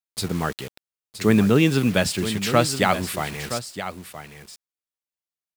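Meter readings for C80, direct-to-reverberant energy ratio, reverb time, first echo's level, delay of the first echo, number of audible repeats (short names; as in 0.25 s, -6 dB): none, none, none, -11.0 dB, 0.97 s, 1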